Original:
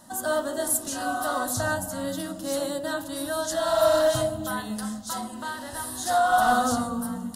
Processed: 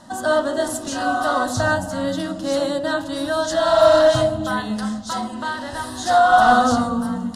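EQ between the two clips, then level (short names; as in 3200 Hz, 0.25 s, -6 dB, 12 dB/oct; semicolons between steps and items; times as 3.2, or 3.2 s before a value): LPF 5300 Hz 12 dB/oct; +7.5 dB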